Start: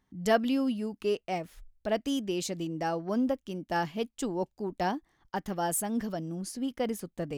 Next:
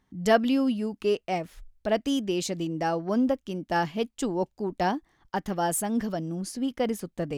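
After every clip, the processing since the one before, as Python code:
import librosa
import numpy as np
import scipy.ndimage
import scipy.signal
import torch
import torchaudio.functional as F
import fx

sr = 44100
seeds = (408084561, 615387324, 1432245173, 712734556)

y = fx.high_shelf(x, sr, hz=11000.0, db=-6.0)
y = F.gain(torch.from_numpy(y), 4.0).numpy()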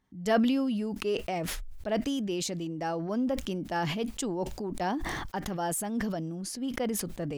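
y = fx.sustainer(x, sr, db_per_s=22.0)
y = F.gain(torch.from_numpy(y), -5.5).numpy()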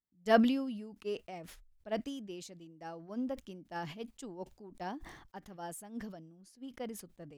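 y = fx.upward_expand(x, sr, threshold_db=-39.0, expansion=2.5)
y = F.gain(torch.from_numpy(y), 1.5).numpy()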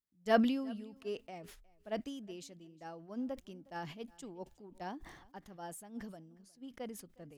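y = fx.echo_feedback(x, sr, ms=361, feedback_pct=16, wet_db=-24)
y = F.gain(torch.from_numpy(y), -2.5).numpy()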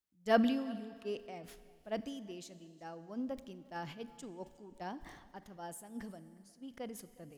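y = fx.rev_schroeder(x, sr, rt60_s=2.2, comb_ms=30, drr_db=14.5)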